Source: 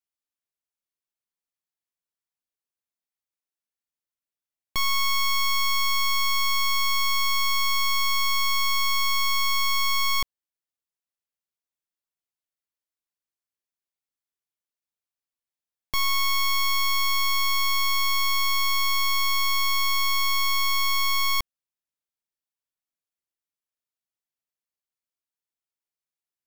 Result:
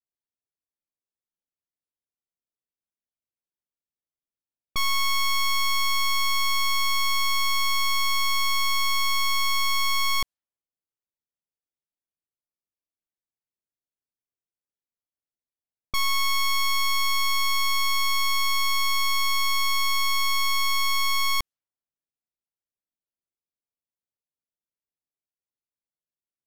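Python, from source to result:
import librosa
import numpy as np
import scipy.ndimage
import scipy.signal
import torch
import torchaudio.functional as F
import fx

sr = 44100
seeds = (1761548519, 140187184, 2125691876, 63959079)

y = fx.env_lowpass(x, sr, base_hz=560.0, full_db=-27.0)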